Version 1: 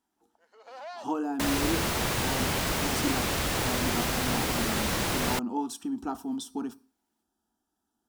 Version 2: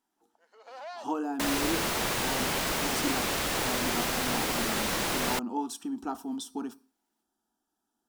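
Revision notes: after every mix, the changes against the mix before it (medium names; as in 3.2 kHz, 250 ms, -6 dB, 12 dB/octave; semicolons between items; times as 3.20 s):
master: add peaking EQ 77 Hz -10 dB 2.1 oct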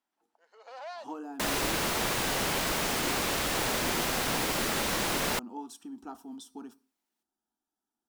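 speech -8.5 dB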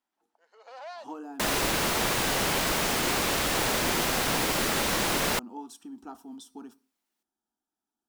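second sound +3.0 dB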